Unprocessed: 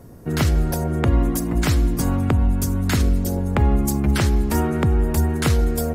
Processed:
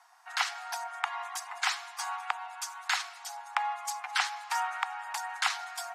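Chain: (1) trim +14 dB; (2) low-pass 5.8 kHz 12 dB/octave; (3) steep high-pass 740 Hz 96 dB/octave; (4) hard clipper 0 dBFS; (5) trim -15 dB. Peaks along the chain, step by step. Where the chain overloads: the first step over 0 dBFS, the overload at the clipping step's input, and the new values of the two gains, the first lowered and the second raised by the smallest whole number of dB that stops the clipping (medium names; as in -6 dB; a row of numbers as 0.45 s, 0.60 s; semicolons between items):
+6.0 dBFS, +5.5 dBFS, +3.0 dBFS, 0.0 dBFS, -15.0 dBFS; step 1, 3.0 dB; step 1 +11 dB, step 5 -12 dB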